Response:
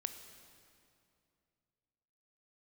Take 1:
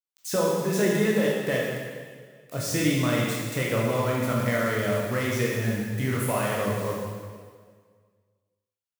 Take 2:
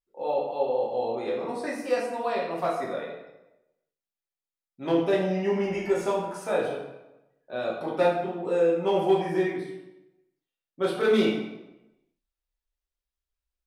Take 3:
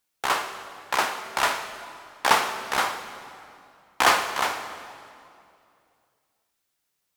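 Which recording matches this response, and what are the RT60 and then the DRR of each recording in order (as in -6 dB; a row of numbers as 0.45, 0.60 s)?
3; 1.7, 1.0, 2.5 s; -4.0, -5.0, 8.0 dB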